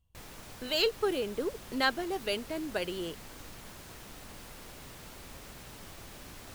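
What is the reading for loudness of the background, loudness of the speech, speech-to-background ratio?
-47.5 LUFS, -32.5 LUFS, 15.0 dB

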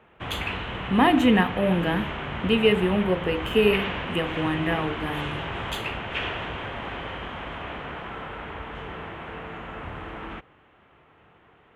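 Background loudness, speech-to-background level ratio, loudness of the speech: -32.5 LUFS, 8.5 dB, -24.0 LUFS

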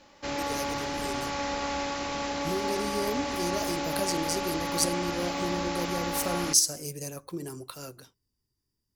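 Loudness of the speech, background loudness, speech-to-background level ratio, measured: -31.0 LUFS, -31.5 LUFS, 0.5 dB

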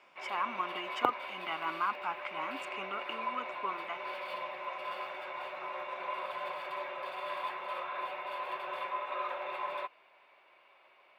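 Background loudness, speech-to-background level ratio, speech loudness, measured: -39.0 LUFS, 0.5 dB, -38.5 LUFS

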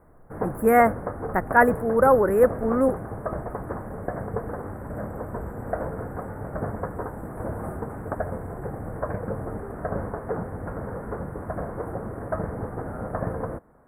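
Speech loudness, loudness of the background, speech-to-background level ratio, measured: -21.0 LUFS, -32.5 LUFS, 11.5 dB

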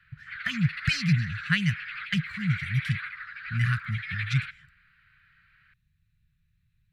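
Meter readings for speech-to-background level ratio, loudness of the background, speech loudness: 7.0 dB, -36.0 LUFS, -29.0 LUFS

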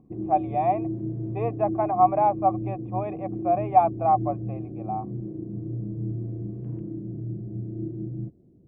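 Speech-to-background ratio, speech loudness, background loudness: 8.0 dB, -25.0 LUFS, -33.0 LUFS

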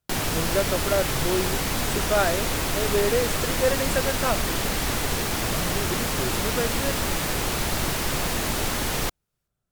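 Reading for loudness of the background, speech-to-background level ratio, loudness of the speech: -25.0 LUFS, -3.5 dB, -28.5 LUFS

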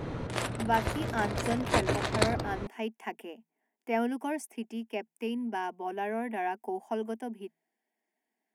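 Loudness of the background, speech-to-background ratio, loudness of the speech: -32.5 LUFS, -2.0 dB, -34.5 LUFS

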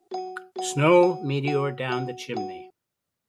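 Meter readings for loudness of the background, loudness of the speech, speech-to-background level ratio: -36.0 LUFS, -24.0 LUFS, 12.0 dB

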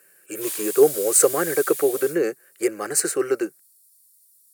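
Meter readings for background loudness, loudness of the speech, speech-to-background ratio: -29.0 LUFS, -21.5 LUFS, 7.5 dB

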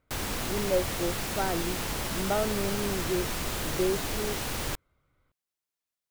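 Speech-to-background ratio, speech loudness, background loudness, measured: -0.5 dB, -32.5 LUFS, -32.0 LUFS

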